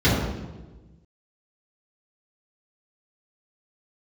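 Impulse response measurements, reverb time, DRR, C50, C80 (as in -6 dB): 1.2 s, -10.5 dB, 0.5 dB, 3.0 dB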